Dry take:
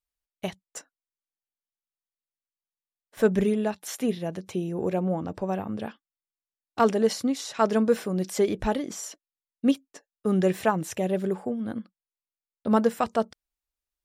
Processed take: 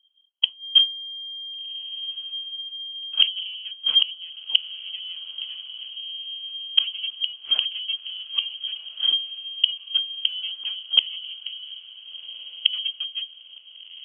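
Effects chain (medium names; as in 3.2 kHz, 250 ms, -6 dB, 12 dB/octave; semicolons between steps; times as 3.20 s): comb filter that takes the minimum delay 0.45 ms; tilt EQ -4.5 dB/octave; band-stop 1.4 kHz, Q 7.8; in parallel at -6 dB: hysteresis with a dead band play -32 dBFS; on the sum: inverted gate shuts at -13 dBFS, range -31 dB; frequency inversion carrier 3.2 kHz; echo that smears into a reverb 1490 ms, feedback 48%, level -14.5 dB; on a send at -23 dB: reverberation RT60 0.35 s, pre-delay 6 ms; on the sum: trim +6.5 dB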